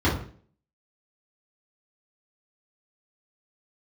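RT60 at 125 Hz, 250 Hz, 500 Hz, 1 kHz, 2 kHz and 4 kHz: 0.50, 0.55, 0.55, 0.45, 0.45, 0.40 s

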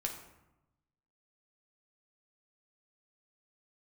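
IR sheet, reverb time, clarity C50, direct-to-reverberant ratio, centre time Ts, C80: 0.95 s, 7.0 dB, 1.0 dB, 25 ms, 9.5 dB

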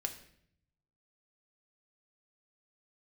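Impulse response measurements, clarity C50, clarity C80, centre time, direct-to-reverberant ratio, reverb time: 11.0 dB, 14.0 dB, 12 ms, 4.0 dB, 0.65 s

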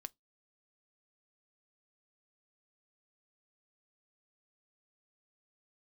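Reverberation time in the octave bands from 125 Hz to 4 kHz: 0.25, 0.25, 0.15, 0.15, 0.15, 0.15 s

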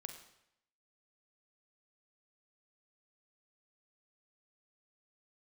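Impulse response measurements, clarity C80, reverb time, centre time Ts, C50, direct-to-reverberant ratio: 9.5 dB, 0.80 s, 20 ms, 7.5 dB, 5.5 dB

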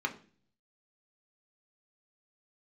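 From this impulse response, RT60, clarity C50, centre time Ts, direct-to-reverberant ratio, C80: 0.40 s, 14.5 dB, 9 ms, 2.5 dB, 19.0 dB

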